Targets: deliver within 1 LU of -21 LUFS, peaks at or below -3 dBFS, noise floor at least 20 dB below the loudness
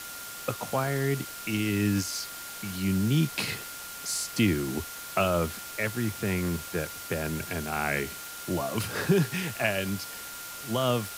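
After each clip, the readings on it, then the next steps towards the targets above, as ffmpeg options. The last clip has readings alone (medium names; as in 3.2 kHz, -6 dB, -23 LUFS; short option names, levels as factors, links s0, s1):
steady tone 1.4 kHz; tone level -44 dBFS; noise floor -41 dBFS; noise floor target -50 dBFS; loudness -29.5 LUFS; peak level -12.0 dBFS; loudness target -21.0 LUFS
-> -af "bandreject=f=1400:w=30"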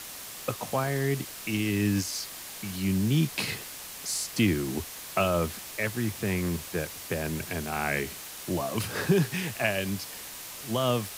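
steady tone not found; noise floor -42 dBFS; noise floor target -50 dBFS
-> -af "afftdn=nr=8:nf=-42"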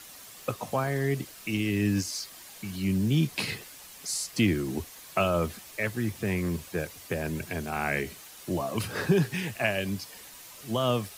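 noise floor -48 dBFS; noise floor target -50 dBFS
-> -af "afftdn=nr=6:nf=-48"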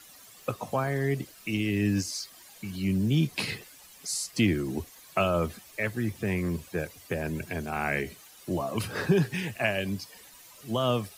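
noise floor -52 dBFS; loudness -30.0 LUFS; peak level -12.5 dBFS; loudness target -21.0 LUFS
-> -af "volume=2.82"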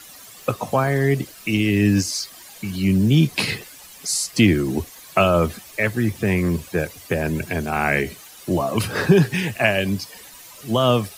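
loudness -21.0 LUFS; peak level -3.5 dBFS; noise floor -43 dBFS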